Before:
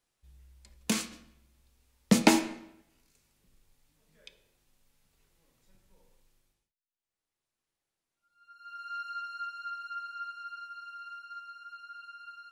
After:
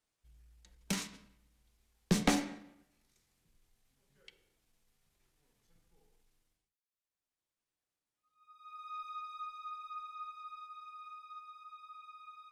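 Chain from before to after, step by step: single-diode clipper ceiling -20 dBFS; pitch shift -2 st; trim -5 dB

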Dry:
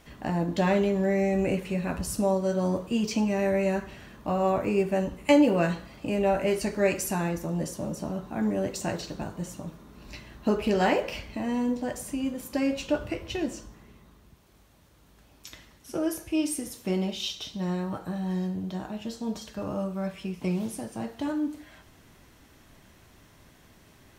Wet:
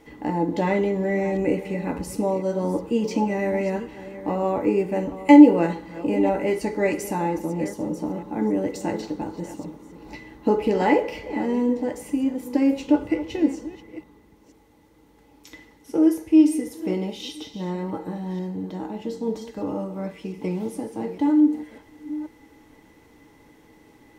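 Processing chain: chunks repeated in reverse 484 ms, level -14 dB; small resonant body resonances 310/450/840/2000 Hz, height 17 dB, ringing for 55 ms; trim -4 dB

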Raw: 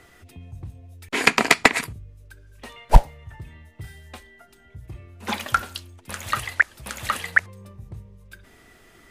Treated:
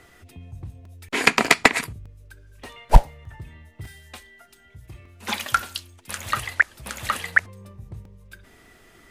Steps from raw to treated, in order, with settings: 3.87–6.18 s: tilt shelf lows -4 dB, about 1.4 kHz; crackling interface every 0.60 s, samples 128, repeat, from 0.85 s

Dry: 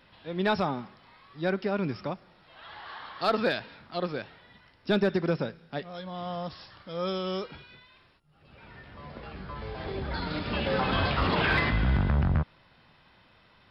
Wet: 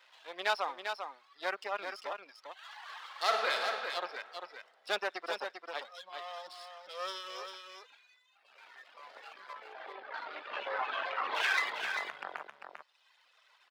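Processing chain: partial rectifier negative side -12 dB; Bessel high-pass 830 Hz, order 4; reverb removal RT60 1.7 s; 9.53–11.35 s: low-pass 2.1 kHz 12 dB/octave; delay 396 ms -6.5 dB; 3.05–3.68 s: reverb throw, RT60 2.2 s, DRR 1.5 dB; trim +2.5 dB

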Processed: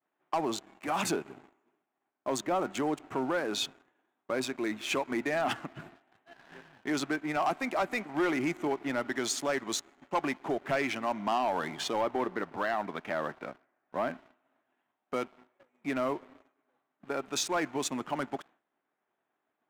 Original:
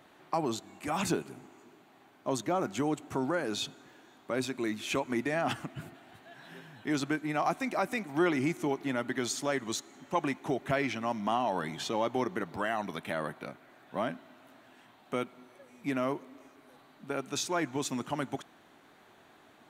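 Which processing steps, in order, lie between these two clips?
local Wiener filter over 9 samples; 12.01–14.10 s: low-pass 2.6 kHz; expander -50 dBFS; high-pass 370 Hz 6 dB/octave; waveshaping leveller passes 2; trim -3.5 dB

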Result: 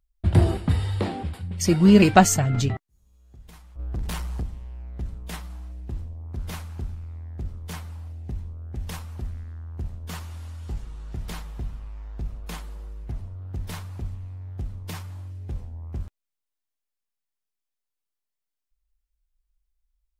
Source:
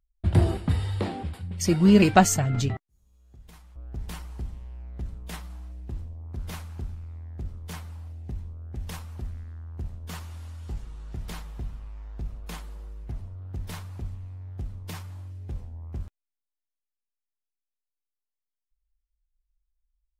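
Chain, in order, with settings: 3.79–4.43 s: waveshaping leveller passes 2; trim +2.5 dB

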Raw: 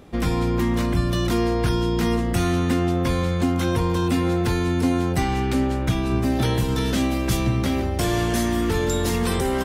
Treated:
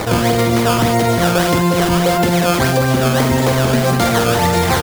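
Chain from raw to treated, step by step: tremolo 3.6 Hz, depth 78%; speed mistake 7.5 ips tape played at 15 ips; decimation with a swept rate 13×, swing 160% 1.7 Hz; band-stop 2.7 kHz, Q 21; loudspeakers at several distances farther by 16 m -9 dB, 68 m -10 dB; level flattener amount 70%; trim +6.5 dB

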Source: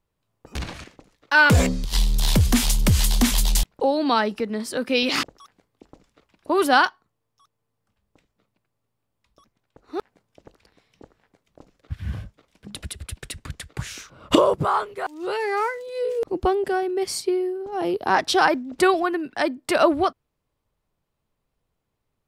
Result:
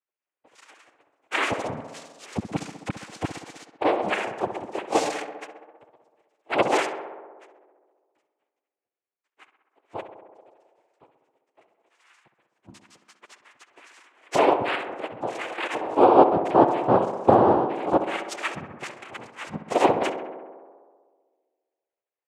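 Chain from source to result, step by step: formants replaced by sine waves; time-frequency box 18.16–19.59 s, 260–1500 Hz -18 dB; touch-sensitive flanger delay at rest 11.4 ms, full sweep at -17 dBFS; noise-vocoded speech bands 4; on a send: tape echo 65 ms, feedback 83%, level -9.5 dB, low-pass 2.2 kHz; on the sum: trim -1 dB

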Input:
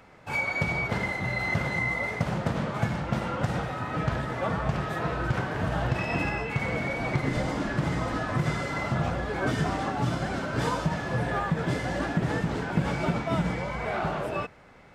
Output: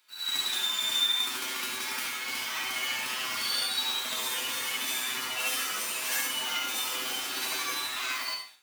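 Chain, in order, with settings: on a send at -5 dB: reverberation RT60 0.55 s, pre-delay 97 ms; on the sum: short-mantissa float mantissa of 4-bit; hum notches 50/100/150/200/250/300/350/400/450 Hz; feedback comb 74 Hz, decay 0.38 s, harmonics all, mix 90%; reverse echo 122 ms -4 dB; level rider gain up to 14 dB; differentiator; speed mistake 45 rpm record played at 78 rpm; trim +6.5 dB

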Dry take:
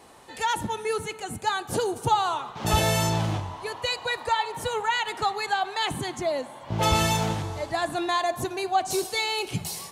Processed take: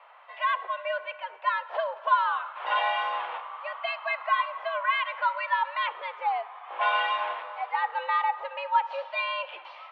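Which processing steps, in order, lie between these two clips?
mistuned SSB +170 Hz 460–2800 Hz; Opus 128 kbps 48 kHz

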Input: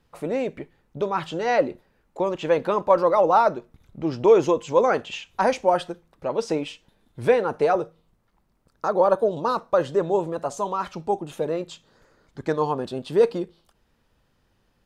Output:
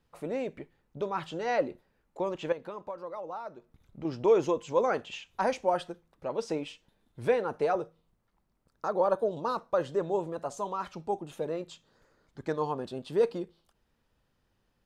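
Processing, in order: 2.52–4.05 s: compression 8:1, threshold -29 dBFS, peak gain reduction 16.5 dB; trim -7.5 dB

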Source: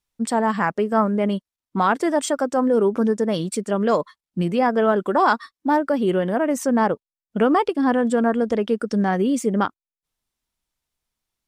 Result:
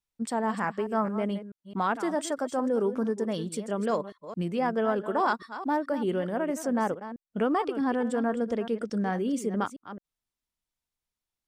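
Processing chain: chunks repeated in reverse 217 ms, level -12 dB; trim -8.5 dB

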